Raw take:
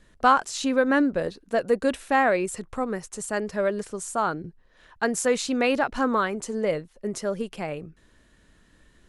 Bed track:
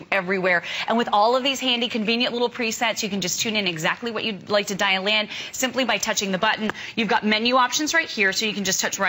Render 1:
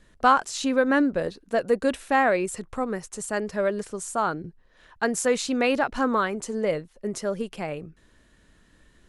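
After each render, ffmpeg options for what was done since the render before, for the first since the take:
ffmpeg -i in.wav -af anull out.wav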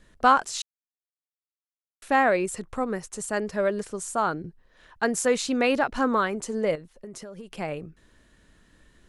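ffmpeg -i in.wav -filter_complex "[0:a]asettb=1/sr,asplit=3[link_01][link_02][link_03];[link_01]atrim=end=6.754[link_04];[link_02]atrim=start=6.75:end=7.58,asetpts=PTS-STARTPTS,afade=type=in:duration=0.004:curve=qsin,afade=type=out:start_time=0.826:duration=0.004:curve=qsin,acompressor=threshold=-36dB:ratio=16:attack=3.2:release=140:knee=1:detection=peak[link_05];[link_03]atrim=start=7.576[link_06];[link_04][link_05]acrossfade=duration=0.004:curve1=hsin:curve2=qsin[link_07];[link_07][link_06]acrossfade=duration=0.004:curve1=qsin:curve2=hsin,asplit=3[link_08][link_09][link_10];[link_08]atrim=end=0.62,asetpts=PTS-STARTPTS,afade=type=out:start_time=0.616:duration=0.004:curve=hsin[link_11];[link_09]atrim=start=0.62:end=2.02,asetpts=PTS-STARTPTS,volume=0[link_12];[link_10]atrim=start=2.02,asetpts=PTS-STARTPTS,afade=type=in:duration=0.004:curve=hsin[link_13];[link_11][link_12][link_13]concat=n=3:v=0:a=1" out.wav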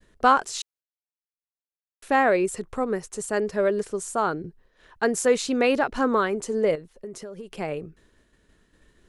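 ffmpeg -i in.wav -af "agate=range=-33dB:threshold=-53dB:ratio=3:detection=peak,equalizer=frequency=410:width_type=o:width=0.52:gain=6" out.wav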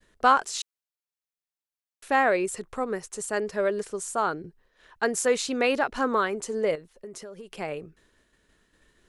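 ffmpeg -i in.wav -af "lowshelf=frequency=480:gain=-6.5" out.wav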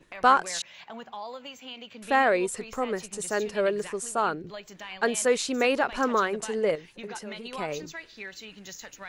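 ffmpeg -i in.wav -i bed.wav -filter_complex "[1:a]volume=-20.5dB[link_01];[0:a][link_01]amix=inputs=2:normalize=0" out.wav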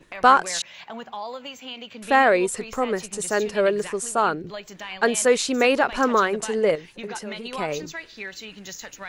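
ffmpeg -i in.wav -af "volume=5dB,alimiter=limit=-3dB:level=0:latency=1" out.wav

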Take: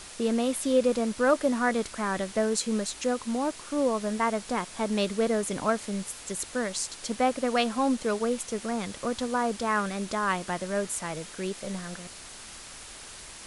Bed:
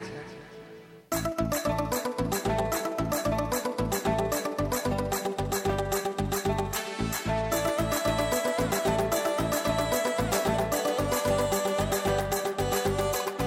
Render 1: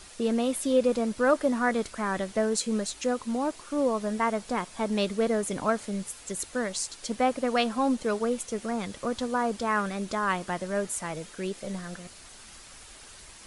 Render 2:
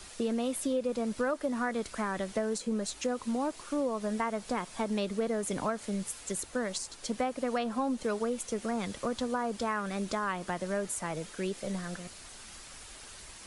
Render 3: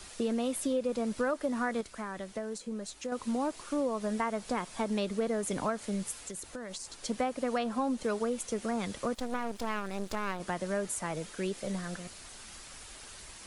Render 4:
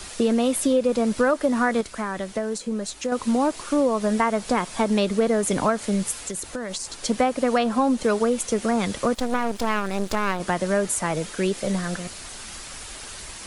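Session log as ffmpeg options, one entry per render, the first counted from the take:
ffmpeg -i in.wav -af "afftdn=noise_reduction=6:noise_floor=-45" out.wav
ffmpeg -i in.wav -filter_complex "[0:a]acrossover=split=120|1500[link_01][link_02][link_03];[link_03]alimiter=limit=-22.5dB:level=0:latency=1:release=410[link_04];[link_01][link_02][link_04]amix=inputs=3:normalize=0,acompressor=threshold=-28dB:ratio=5" out.wav
ffmpeg -i in.wav -filter_complex "[0:a]asettb=1/sr,asplit=3[link_01][link_02][link_03];[link_01]atrim=end=6.174[link_04];[link_02]atrim=start=6.17:end=7.04,asetpts=PTS-STARTPTS,afade=type=in:duration=0.004:curve=qsin,afade=type=out:start_time=0.866:duration=0.004:curve=qsin,acompressor=threshold=-37dB:ratio=6:attack=3.2:release=140:knee=1:detection=peak[link_05];[link_03]atrim=start=7.036[link_06];[link_04][link_05]acrossfade=duration=0.004:curve1=hsin:curve2=qsin[link_07];[link_07][link_06]acrossfade=duration=0.004:curve1=qsin:curve2=hsin,asettb=1/sr,asplit=3[link_08][link_09][link_10];[link_08]atrim=end=9.144[link_11];[link_09]atrim=start=9.14:end=10.4,asetpts=PTS-STARTPTS,afade=type=in:duration=0.004:curve=qsin,afade=type=out:start_time=1.256:duration=0.004:curve=qsin,aeval=exprs='max(val(0),0)':channel_layout=same[link_12];[link_10]atrim=start=10.396[link_13];[link_11][link_12]acrossfade=duration=0.004:curve1=hsin:curve2=qsin[link_14];[link_14][link_13]acrossfade=duration=0.004:curve1=qsin:curve2=hsin,asplit=3[link_15][link_16][link_17];[link_15]atrim=end=1.812[link_18];[link_16]atrim=start=1.808:end=3.122,asetpts=PTS-STARTPTS,volume=-6dB[link_19];[link_17]atrim=start=3.118[link_20];[link_18][link_19]acrossfade=duration=0.004:curve1=hsin:curve2=hsin[link_21];[link_21][link_20]acrossfade=duration=0.004:curve1=hsin:curve2=hsin" out.wav
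ffmpeg -i in.wav -af "volume=10.5dB" out.wav

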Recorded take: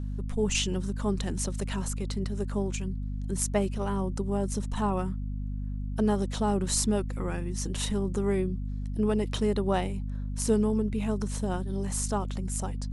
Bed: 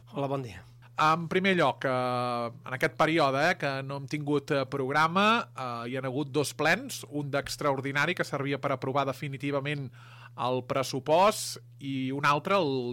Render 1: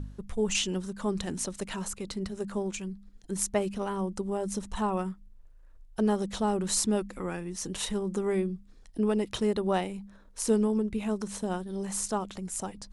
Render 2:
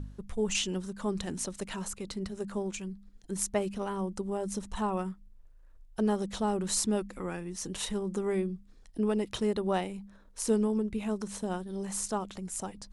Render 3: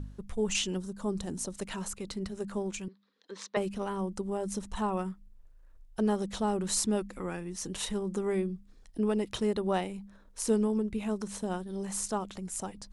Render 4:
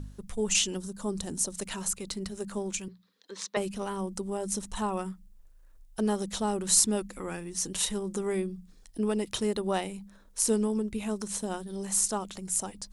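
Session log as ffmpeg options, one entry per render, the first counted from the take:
ffmpeg -i in.wav -af "bandreject=frequency=50:width_type=h:width=4,bandreject=frequency=100:width_type=h:width=4,bandreject=frequency=150:width_type=h:width=4,bandreject=frequency=200:width_type=h:width=4,bandreject=frequency=250:width_type=h:width=4" out.wav
ffmpeg -i in.wav -af "volume=-2dB" out.wav
ffmpeg -i in.wav -filter_complex "[0:a]asettb=1/sr,asplit=3[link_01][link_02][link_03];[link_01]atrim=end=0.774[link_04];[link_02]atrim=start=0.77:end=1.56,asetpts=PTS-STARTPTS,afade=type=in:duration=0.004:curve=qsin,afade=type=out:start_time=0.786:duration=0.004:curve=qsin,equalizer=frequency=2200:width_type=o:width=1.7:gain=-8.5[link_05];[link_03]atrim=start=1.556[link_06];[link_04][link_05]acrossfade=duration=0.004:curve1=hsin:curve2=qsin[link_07];[link_07][link_06]acrossfade=duration=0.004:curve1=qsin:curve2=hsin,asettb=1/sr,asplit=3[link_08][link_09][link_10];[link_08]atrim=end=2.884[link_11];[link_09]atrim=start=2.88:end=3.57,asetpts=PTS-STARTPTS,afade=type=in:duration=0.004:curve=qsin,afade=type=out:start_time=0.686:duration=0.004:curve=qsin,highpass=frequency=310:width=0.5412,highpass=frequency=310:width=1.3066,equalizer=frequency=340:width_type=q:width=4:gain=-9,equalizer=frequency=490:width_type=q:width=4:gain=5,equalizer=frequency=700:width_type=q:width=4:gain=-8,equalizer=frequency=1100:width_type=q:width=4:gain=7,equalizer=frequency=1800:width_type=q:width=4:gain=4,equalizer=frequency=3800:width_type=q:width=4:gain=8,lowpass=frequency=5000:width=0.5412,lowpass=frequency=5000:width=1.3066[link_12];[link_10]atrim=start=3.566[link_13];[link_11][link_12]acrossfade=duration=0.004:curve1=hsin:curve2=qsin[link_14];[link_14][link_13]acrossfade=duration=0.004:curve1=qsin:curve2=hsin" out.wav
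ffmpeg -i in.wav -af "highshelf=frequency=4500:gain=11,bandreject=frequency=60:width_type=h:width=6,bandreject=frequency=120:width_type=h:width=6,bandreject=frequency=180:width_type=h:width=6" out.wav

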